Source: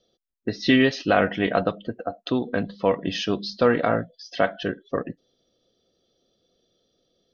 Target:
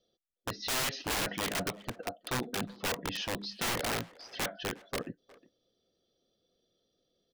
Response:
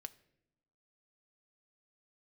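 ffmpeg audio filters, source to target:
-filter_complex "[0:a]aeval=exprs='(mod(8.41*val(0)+1,2)-1)/8.41':channel_layout=same,asplit=2[link_01][link_02];[link_02]adelay=360,highpass=300,lowpass=3400,asoftclip=type=hard:threshold=-28.5dB,volume=-17dB[link_03];[link_01][link_03]amix=inputs=2:normalize=0,volume=-8dB"

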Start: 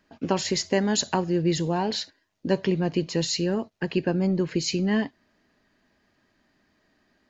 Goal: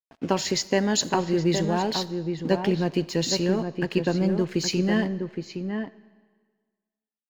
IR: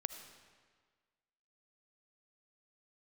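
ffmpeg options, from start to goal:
-filter_complex "[0:a]aeval=exprs='sgn(val(0))*max(abs(val(0))-0.00422,0)':channel_layout=same,asplit=2[link_01][link_02];[link_02]adelay=816.3,volume=-6dB,highshelf=frequency=4000:gain=-18.4[link_03];[link_01][link_03]amix=inputs=2:normalize=0,asplit=2[link_04][link_05];[1:a]atrim=start_sample=2205,lowshelf=frequency=410:gain=-5.5[link_06];[link_05][link_06]afir=irnorm=-1:irlink=0,volume=-6dB[link_07];[link_04][link_07]amix=inputs=2:normalize=0,volume=-1.5dB"

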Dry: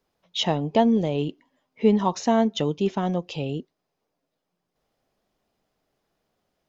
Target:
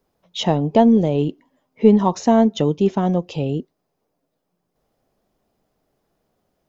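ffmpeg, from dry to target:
ffmpeg -i in.wav -af "aeval=exprs='0.447*(cos(1*acos(clip(val(0)/0.447,-1,1)))-cos(1*PI/2))+0.0112*(cos(2*acos(clip(val(0)/0.447,-1,1)))-cos(2*PI/2))':channel_layout=same,equalizer=frequency=3100:width=0.4:gain=-7.5,volume=7dB" out.wav

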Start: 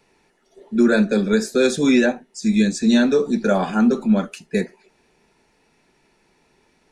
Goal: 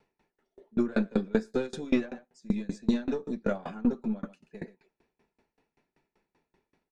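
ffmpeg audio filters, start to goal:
ffmpeg -i in.wav -filter_complex "[0:a]lowpass=frequency=2100:poles=1,aeval=exprs='0.501*(cos(1*acos(clip(val(0)/0.501,-1,1)))-cos(1*PI/2))+0.0447*(cos(4*acos(clip(val(0)/0.501,-1,1)))-cos(4*PI/2))':channel_layout=same,asplit=2[link_01][link_02];[link_02]aecho=0:1:132:0.106[link_03];[link_01][link_03]amix=inputs=2:normalize=0,aeval=exprs='val(0)*pow(10,-28*if(lt(mod(5.2*n/s,1),2*abs(5.2)/1000),1-mod(5.2*n/s,1)/(2*abs(5.2)/1000),(mod(5.2*n/s,1)-2*abs(5.2)/1000)/(1-2*abs(5.2)/1000))/20)':channel_layout=same,volume=-4.5dB" out.wav

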